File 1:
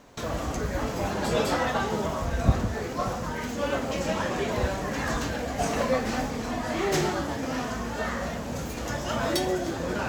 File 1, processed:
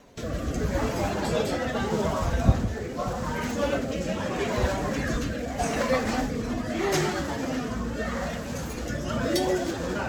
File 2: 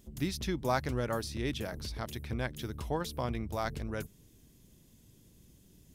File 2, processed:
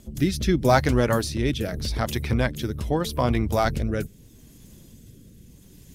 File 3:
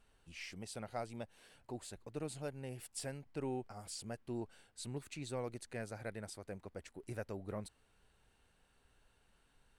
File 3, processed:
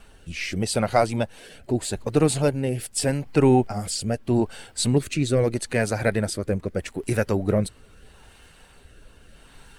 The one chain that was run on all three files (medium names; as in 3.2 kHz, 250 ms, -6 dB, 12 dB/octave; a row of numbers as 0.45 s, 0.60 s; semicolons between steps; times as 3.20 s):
coarse spectral quantiser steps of 15 dB; rotary cabinet horn 0.8 Hz; peak normalisation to -6 dBFS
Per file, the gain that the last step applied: +3.5 dB, +14.0 dB, +23.5 dB